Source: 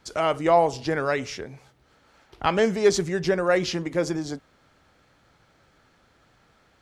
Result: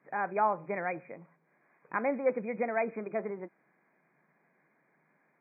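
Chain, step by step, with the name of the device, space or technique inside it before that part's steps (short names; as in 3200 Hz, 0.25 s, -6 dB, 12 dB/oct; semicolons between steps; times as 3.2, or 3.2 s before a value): nightcore (varispeed +26%); FFT band-pass 130–2500 Hz; gain -9 dB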